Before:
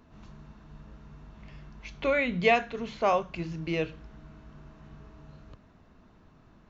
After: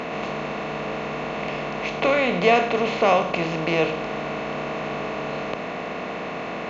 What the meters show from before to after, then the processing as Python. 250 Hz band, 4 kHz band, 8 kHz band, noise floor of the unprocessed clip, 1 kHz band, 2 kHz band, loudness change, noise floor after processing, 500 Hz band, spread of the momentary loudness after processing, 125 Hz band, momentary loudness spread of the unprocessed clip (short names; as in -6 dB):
+8.5 dB, +10.0 dB, n/a, -58 dBFS, +8.5 dB, +7.5 dB, +4.0 dB, -31 dBFS, +8.5 dB, 11 LU, +6.5 dB, 13 LU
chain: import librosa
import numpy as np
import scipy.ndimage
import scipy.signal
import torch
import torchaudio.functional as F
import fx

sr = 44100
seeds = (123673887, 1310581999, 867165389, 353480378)

y = fx.bin_compress(x, sr, power=0.4)
y = fx.highpass(y, sr, hz=180.0, slope=6)
y = fx.dynamic_eq(y, sr, hz=1900.0, q=1.5, threshold_db=-38.0, ratio=4.0, max_db=-5)
y = F.gain(torch.from_numpy(y), 4.0).numpy()